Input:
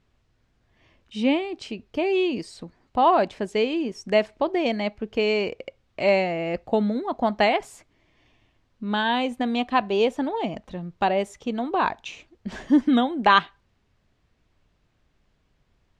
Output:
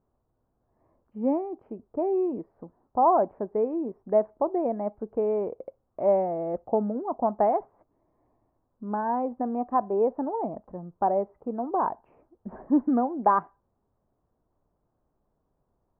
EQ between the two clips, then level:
inverse Chebyshev low-pass filter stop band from 3,400 Hz, stop band 60 dB
low-shelf EQ 230 Hz −10.5 dB
0.0 dB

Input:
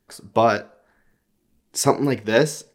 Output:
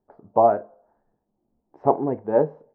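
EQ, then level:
transistor ladder low-pass 930 Hz, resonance 50%
low-shelf EQ 160 Hz −6.5 dB
+5.5 dB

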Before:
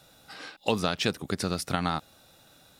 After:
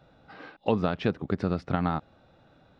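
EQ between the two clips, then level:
head-to-tape spacing loss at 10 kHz 44 dB
+4.0 dB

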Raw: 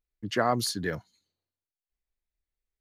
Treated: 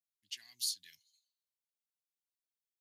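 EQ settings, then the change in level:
inverse Chebyshev high-pass filter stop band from 1,400 Hz, stop band 40 dB
high-shelf EQ 5,400 Hz +4.5 dB
−6.5 dB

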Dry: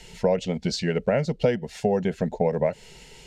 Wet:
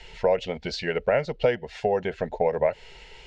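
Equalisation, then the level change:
low-pass filter 3,300 Hz 12 dB per octave
parametric band 190 Hz −15 dB 1.6 octaves
+4.0 dB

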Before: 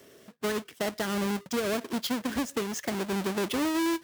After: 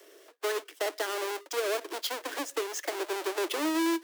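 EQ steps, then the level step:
Butterworth high-pass 300 Hz 96 dB per octave
0.0 dB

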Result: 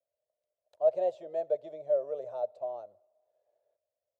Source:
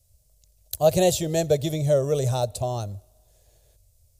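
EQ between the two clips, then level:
four-pole ladder band-pass 690 Hz, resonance 55%
notch filter 780 Hz, Q 15
−2.0 dB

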